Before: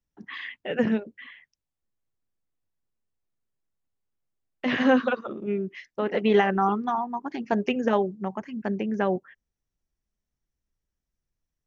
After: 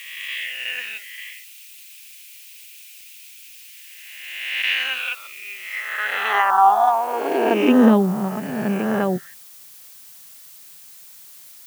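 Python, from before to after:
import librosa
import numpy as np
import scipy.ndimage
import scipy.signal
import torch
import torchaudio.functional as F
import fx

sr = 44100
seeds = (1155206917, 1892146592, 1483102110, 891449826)

y = fx.spec_swells(x, sr, rise_s=1.54)
y = fx.dmg_noise_colour(y, sr, seeds[0], colour='blue', level_db=-44.0)
y = fx.filter_sweep_highpass(y, sr, from_hz=2500.0, to_hz=140.0, start_s=5.62, end_s=8.3, q=4.7)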